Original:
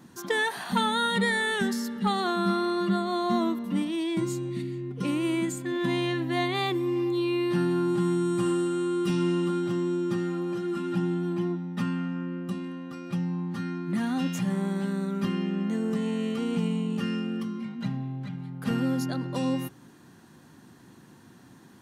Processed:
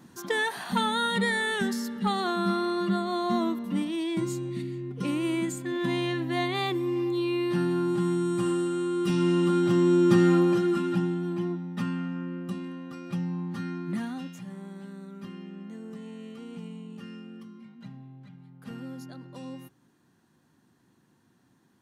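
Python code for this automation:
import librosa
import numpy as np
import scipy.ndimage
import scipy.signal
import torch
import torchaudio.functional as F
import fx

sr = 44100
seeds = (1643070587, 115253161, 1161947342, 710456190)

y = fx.gain(x, sr, db=fx.line((8.93, -1.0), (10.34, 10.5), (11.15, -1.5), (13.9, -1.5), (14.36, -13.0)))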